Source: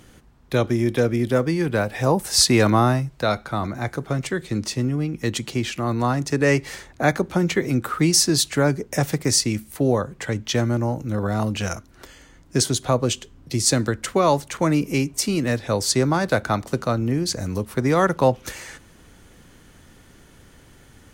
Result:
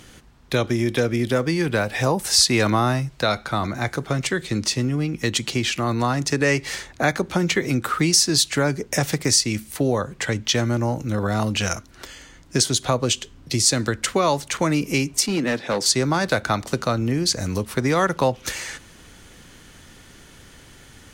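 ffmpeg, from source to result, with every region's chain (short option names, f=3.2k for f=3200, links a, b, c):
-filter_complex "[0:a]asettb=1/sr,asplit=3[a][b][c];[a]atrim=end=15.264[d];[b]atrim=start=15.26:end=15.86,asetpts=PTS-STARTPTS,afade=t=in:d=0.004:c=qsin,afade=t=out:st=0.596:d=0.004:c=qsin,highpass=f=160:w=0.5412,highpass=f=160:w=1.3066,highshelf=f=4.2k:g=-10,asoftclip=type=hard:threshold=-18.5dB[e];[c]atrim=start=15.856[f];[d][e]acrossfade=d=0.004:c1=hsin:c2=qsin[g];[g][f]acrossfade=d=0.004:c1=qsin:c2=hsin,equalizer=f=4.2k:t=o:w=2.9:g=6.5,acompressor=threshold=-20dB:ratio=2,volume=1.5dB"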